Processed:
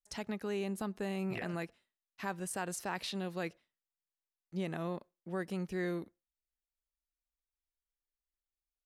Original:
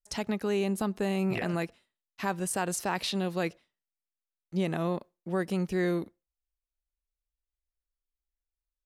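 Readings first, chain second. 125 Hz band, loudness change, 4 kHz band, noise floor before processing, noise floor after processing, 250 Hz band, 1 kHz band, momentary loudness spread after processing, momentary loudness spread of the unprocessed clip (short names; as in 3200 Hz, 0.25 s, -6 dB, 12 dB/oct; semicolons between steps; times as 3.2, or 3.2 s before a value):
-8.0 dB, -8.0 dB, -8.0 dB, under -85 dBFS, under -85 dBFS, -8.0 dB, -7.5 dB, 6 LU, 7 LU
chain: bell 1700 Hz +2.5 dB; gain -8 dB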